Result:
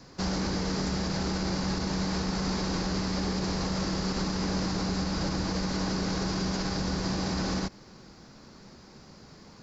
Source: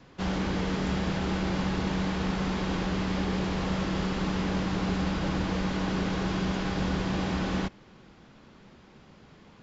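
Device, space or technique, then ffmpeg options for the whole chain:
over-bright horn tweeter: -af "highshelf=f=3.9k:t=q:w=3:g=6,alimiter=limit=-23.5dB:level=0:latency=1:release=74,volume=2.5dB"

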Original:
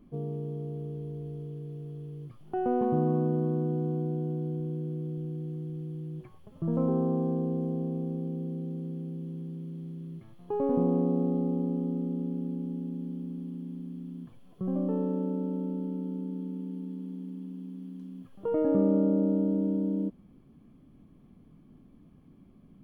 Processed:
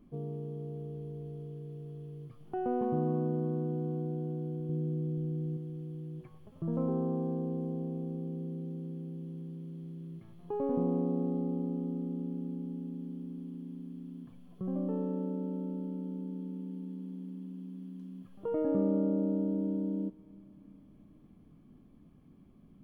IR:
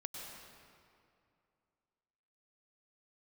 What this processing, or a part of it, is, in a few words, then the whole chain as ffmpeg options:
ducked reverb: -filter_complex "[0:a]asplit=3[a][b][c];[1:a]atrim=start_sample=2205[d];[b][d]afir=irnorm=-1:irlink=0[e];[c]apad=whole_len=1006930[f];[e][f]sidechaincompress=threshold=-38dB:ratio=8:attack=16:release=862,volume=-6.5dB[g];[a][g]amix=inputs=2:normalize=0,asettb=1/sr,asplit=3[h][i][j];[h]atrim=end=4.694[k];[i]atrim=start=4.69:end=5.57,asetpts=PTS-STARTPTS,afade=t=in:d=0.004:c=qsin,afade=t=out:st=0.876:d=0.004:c=qsin,lowshelf=f=420:g=6[l];[j]atrim=start=5.566[m];[k][l]acrossfade=d=0.004:c1=hsin:c2=qsin[n];[n][m]acrossfade=d=0.004:c1=qsin:c2=hsin,volume=-5dB"

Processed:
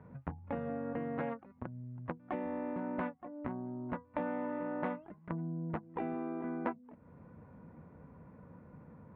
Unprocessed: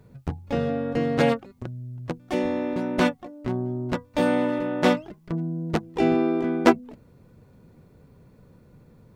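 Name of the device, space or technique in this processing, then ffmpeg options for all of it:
bass amplifier: -af "acompressor=threshold=-36dB:ratio=5,highpass=78,equalizer=f=120:t=q:w=4:g=-8,equalizer=f=390:t=q:w=4:g=-8,equalizer=f=980:t=q:w=4:g=5,lowpass=f=2k:w=0.5412,lowpass=f=2k:w=1.3066,volume=1dB"

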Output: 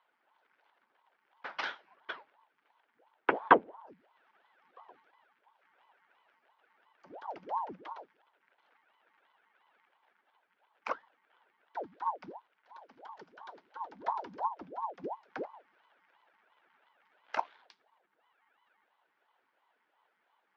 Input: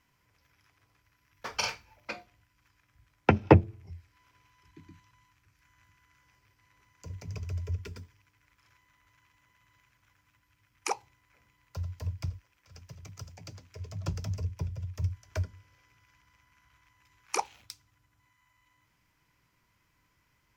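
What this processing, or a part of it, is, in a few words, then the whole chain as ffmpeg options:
voice changer toy: -af "aeval=exprs='val(0)*sin(2*PI*550*n/s+550*0.85/2.9*sin(2*PI*2.9*n/s))':c=same,highpass=440,equalizer=f=910:t=q:w=4:g=6,equalizer=f=1.5k:t=q:w=4:g=6,equalizer=f=2.6k:t=q:w=4:g=-4,lowpass=f=3.5k:w=0.5412,lowpass=f=3.5k:w=1.3066,volume=-1.5dB"

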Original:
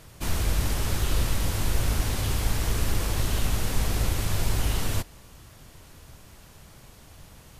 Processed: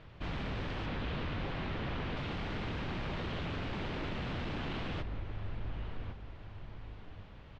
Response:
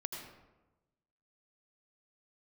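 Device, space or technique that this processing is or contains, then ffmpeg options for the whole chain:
synthesiser wavefolder: -filter_complex "[0:a]asettb=1/sr,asplit=3[a][b][c];[a]atrim=end=0.864[d];[b]atrim=start=0.86:end=2.17,asetpts=PTS-STARTPTS,afade=t=in:d=0.004:c=qsin,afade=t=out:st=1.306:d=0.004:c=qsin,acrossover=split=4500[e][f];[f]acompressor=threshold=-44dB:ratio=4:attack=1:release=60[g];[e][g]amix=inputs=2:normalize=0[h];[c]atrim=start=2.166[i];[d][h]acrossfade=d=0.004:c1=hsin:c2=qsin[j];[j][i]acrossfade=d=0.004:c1=qsin:c2=hsin,asplit=2[k][l];[l]adelay=1108,lowpass=f=2.1k:p=1,volume=-10.5dB,asplit=2[m][n];[n]adelay=1108,lowpass=f=2.1k:p=1,volume=0.35,asplit=2[o][p];[p]adelay=1108,lowpass=f=2.1k:p=1,volume=0.35,asplit=2[q][r];[r]adelay=1108,lowpass=f=2.1k:p=1,volume=0.35[s];[k][m][o][q][s]amix=inputs=5:normalize=0,aeval=exprs='0.0422*(abs(mod(val(0)/0.0422+3,4)-2)-1)':c=same,lowpass=f=3.4k:w=0.5412,lowpass=f=3.4k:w=1.3066,volume=-4dB"

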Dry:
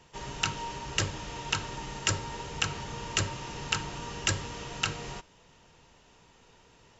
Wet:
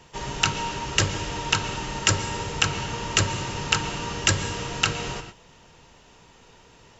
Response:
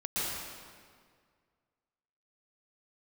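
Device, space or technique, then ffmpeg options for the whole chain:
keyed gated reverb: -filter_complex "[0:a]asplit=3[a][b][c];[1:a]atrim=start_sample=2205[d];[b][d]afir=irnorm=-1:irlink=0[e];[c]apad=whole_len=308674[f];[e][f]sidechaingate=range=-33dB:threshold=-52dB:ratio=16:detection=peak,volume=-16.5dB[g];[a][g]amix=inputs=2:normalize=0,volume=6.5dB"

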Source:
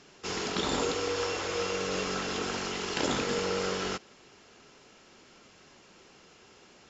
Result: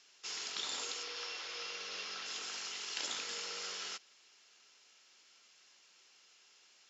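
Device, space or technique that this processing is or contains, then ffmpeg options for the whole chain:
piezo pickup straight into a mixer: -filter_complex "[0:a]lowpass=5.8k,aderivative,asettb=1/sr,asplit=3[a][b][c];[a]atrim=end=1.034[d];[b]atrim=start=1.03:end=2.26,asetpts=PTS-STARTPTS,afade=t=in:d=0.004:c=qsin,afade=t=out:st=1.226:d=0.004:c=qsin,lowpass=f=5.6k:w=0.5412,lowpass=f=5.6k:w=1.3066[e];[c]atrim=start=2.256[f];[d][e]acrossfade=d=0.004:c1=hsin:c2=qsin[g];[g][f]acrossfade=d=0.004:c1=qsin:c2=hsin,volume=2dB"

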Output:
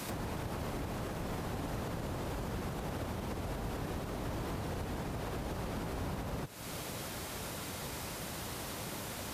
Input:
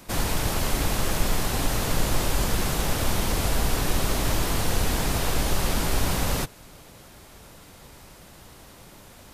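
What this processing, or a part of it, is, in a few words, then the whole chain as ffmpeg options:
podcast mastering chain: -af "highpass=69,deesser=0.85,acompressor=threshold=-41dB:ratio=4,alimiter=level_in=12.5dB:limit=-24dB:level=0:latency=1:release=108,volume=-12.5dB,volume=7.5dB" -ar 48000 -c:a libmp3lame -b:a 96k

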